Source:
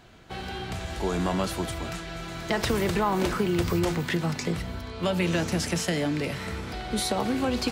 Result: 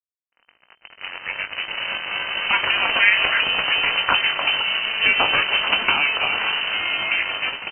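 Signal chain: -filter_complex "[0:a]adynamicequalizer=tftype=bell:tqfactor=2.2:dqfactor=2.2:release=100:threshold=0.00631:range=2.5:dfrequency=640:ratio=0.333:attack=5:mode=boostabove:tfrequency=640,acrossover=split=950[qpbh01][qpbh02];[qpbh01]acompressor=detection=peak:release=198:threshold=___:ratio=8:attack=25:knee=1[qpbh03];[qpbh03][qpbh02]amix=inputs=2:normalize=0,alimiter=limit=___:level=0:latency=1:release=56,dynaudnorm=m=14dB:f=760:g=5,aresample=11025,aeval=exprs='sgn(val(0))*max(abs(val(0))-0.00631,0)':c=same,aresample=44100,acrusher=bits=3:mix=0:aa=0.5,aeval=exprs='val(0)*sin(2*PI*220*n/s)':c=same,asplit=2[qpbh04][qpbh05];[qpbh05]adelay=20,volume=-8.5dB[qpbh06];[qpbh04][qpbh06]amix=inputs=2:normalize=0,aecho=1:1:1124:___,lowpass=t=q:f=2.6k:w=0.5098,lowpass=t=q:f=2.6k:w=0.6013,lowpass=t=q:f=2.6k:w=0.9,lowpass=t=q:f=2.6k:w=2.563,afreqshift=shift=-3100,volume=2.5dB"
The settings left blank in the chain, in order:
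-33dB, -16dB, 0.141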